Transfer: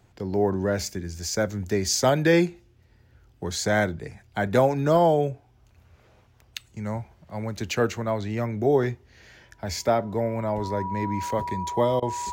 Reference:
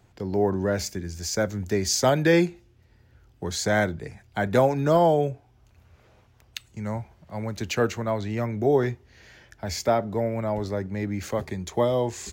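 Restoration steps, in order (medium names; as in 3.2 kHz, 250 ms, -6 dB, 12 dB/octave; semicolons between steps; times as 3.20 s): band-stop 970 Hz, Q 30; interpolate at 12.00 s, 22 ms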